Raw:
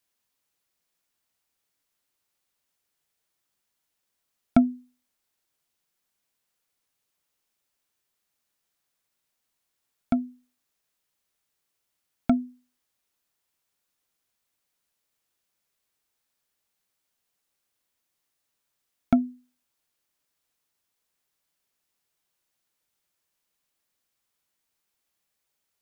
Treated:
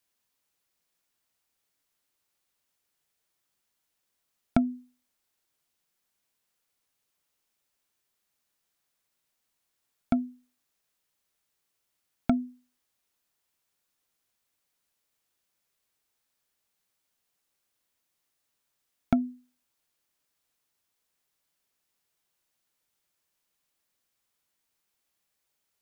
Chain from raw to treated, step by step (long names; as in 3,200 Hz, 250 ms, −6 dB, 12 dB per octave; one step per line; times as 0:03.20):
downward compressor, threshold −19 dBFS, peak gain reduction 7 dB